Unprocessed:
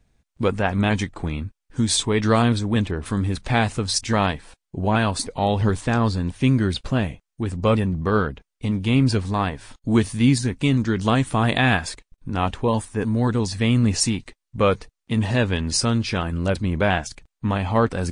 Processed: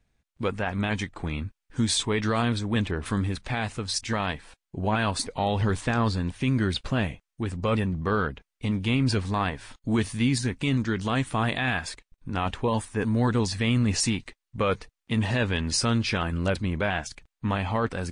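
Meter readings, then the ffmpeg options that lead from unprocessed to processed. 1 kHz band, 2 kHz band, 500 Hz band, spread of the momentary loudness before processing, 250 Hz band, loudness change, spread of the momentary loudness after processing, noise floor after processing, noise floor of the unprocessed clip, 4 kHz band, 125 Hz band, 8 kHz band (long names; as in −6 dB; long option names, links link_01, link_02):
−5.0 dB, −3.5 dB, −6.0 dB, 10 LU, −5.5 dB, −5.0 dB, 8 LU, −85 dBFS, −81 dBFS, −3.5 dB, −5.5 dB, −4.5 dB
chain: -af "equalizer=frequency=2100:width_type=o:width=2.3:gain=4.5,dynaudnorm=framelen=160:gausssize=5:maxgain=6.5dB,alimiter=limit=-7.5dB:level=0:latency=1:release=13,volume=-8dB"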